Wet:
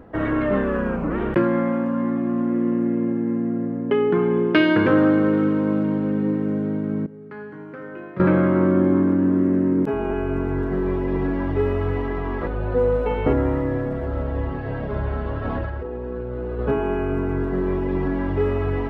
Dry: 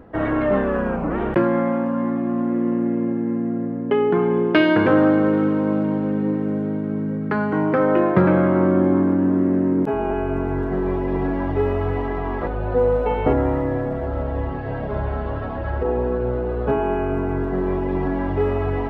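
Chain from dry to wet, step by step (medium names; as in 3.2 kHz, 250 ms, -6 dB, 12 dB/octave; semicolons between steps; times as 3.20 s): dynamic bell 750 Hz, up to -7 dB, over -37 dBFS, Q 2.2; 7.06–8.20 s: feedback comb 140 Hz, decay 1 s, harmonics all, mix 90%; 15.45–16.59 s: compressor with a negative ratio -28 dBFS, ratio -1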